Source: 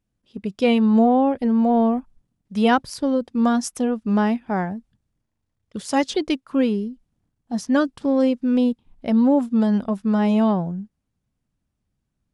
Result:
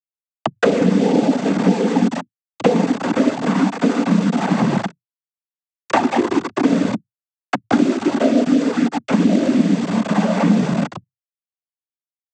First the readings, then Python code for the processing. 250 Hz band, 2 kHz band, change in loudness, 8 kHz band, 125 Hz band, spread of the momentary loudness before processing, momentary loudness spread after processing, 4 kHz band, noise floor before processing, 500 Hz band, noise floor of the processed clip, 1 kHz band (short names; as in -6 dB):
+3.0 dB, +5.5 dB, +3.0 dB, +2.5 dB, +8.0 dB, 13 LU, 7 LU, +3.5 dB, -77 dBFS, +3.0 dB, under -85 dBFS, +2.5 dB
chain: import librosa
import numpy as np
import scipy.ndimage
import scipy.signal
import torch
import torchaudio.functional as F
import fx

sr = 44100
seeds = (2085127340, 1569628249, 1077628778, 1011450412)

p1 = fx.rev_gated(x, sr, seeds[0], gate_ms=450, shape='falling', drr_db=-3.5)
p2 = fx.env_lowpass_down(p1, sr, base_hz=570.0, full_db=-13.0)
p3 = 10.0 ** (-15.0 / 20.0) * np.tanh(p2 / 10.0 ** (-15.0 / 20.0))
p4 = p2 + (p3 * librosa.db_to_amplitude(-11.0))
p5 = fx.peak_eq(p4, sr, hz=1800.0, db=4.0, octaves=0.24)
p6 = fx.echo_feedback(p5, sr, ms=136, feedback_pct=53, wet_db=-12.5)
p7 = fx.env_flanger(p6, sr, rest_ms=5.9, full_db=-9.0)
p8 = np.where(np.abs(p7) >= 10.0 ** (-19.5 / 20.0), p7, 0.0)
p9 = fx.noise_vocoder(p8, sr, seeds[1], bands=16)
p10 = fx.band_squash(p9, sr, depth_pct=100)
y = p10 * librosa.db_to_amplitude(-1.0)